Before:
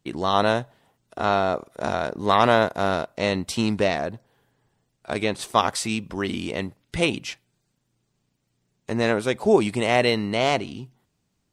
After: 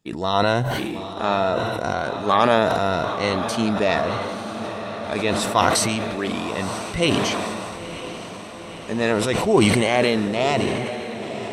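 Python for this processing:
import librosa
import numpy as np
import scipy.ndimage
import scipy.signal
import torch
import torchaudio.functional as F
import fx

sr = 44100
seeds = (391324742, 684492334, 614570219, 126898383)

y = fx.spec_ripple(x, sr, per_octave=2.0, drift_hz=0.78, depth_db=9)
y = fx.echo_diffused(y, sr, ms=976, feedback_pct=71, wet_db=-10)
y = fx.sustainer(y, sr, db_per_s=23.0)
y = y * 10.0 ** (-1.0 / 20.0)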